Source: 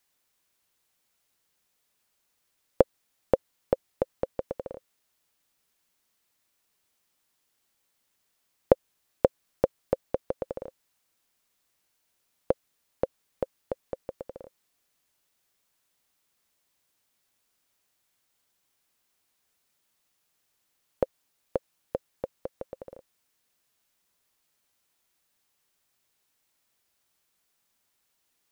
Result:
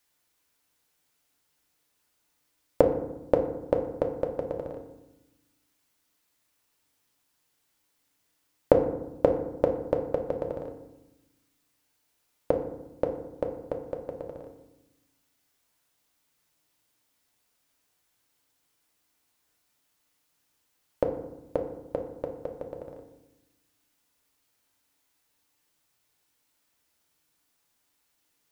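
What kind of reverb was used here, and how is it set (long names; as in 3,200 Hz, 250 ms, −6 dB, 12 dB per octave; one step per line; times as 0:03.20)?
feedback delay network reverb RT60 0.94 s, low-frequency decay 1.55×, high-frequency decay 0.5×, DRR 2.5 dB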